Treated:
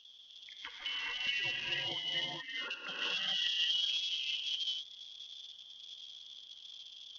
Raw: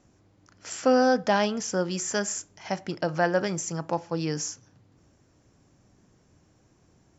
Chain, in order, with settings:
0:00.70–0:02.99: high-pass filter 1,400 Hz 6 dB per octave
gate on every frequency bin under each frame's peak −10 dB strong
brickwall limiter −24.5 dBFS, peak gain reduction 10.5 dB
downward compressor 8 to 1, threshold −43 dBFS, peak gain reduction 14.5 dB
background noise violet −69 dBFS
reverb whose tail is shaped and stops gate 460 ms rising, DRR −6.5 dB
voice inversion scrambler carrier 3,500 Hz
level +4 dB
SBC 64 kbit/s 48,000 Hz

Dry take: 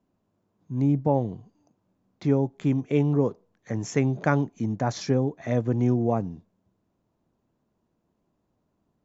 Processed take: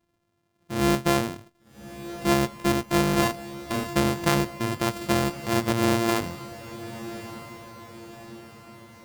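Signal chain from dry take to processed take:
samples sorted by size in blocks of 128 samples
0:03.19–0:03.88: double-tracking delay 33 ms −4 dB
feedback delay with all-pass diffusion 1,216 ms, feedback 50%, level −14 dB

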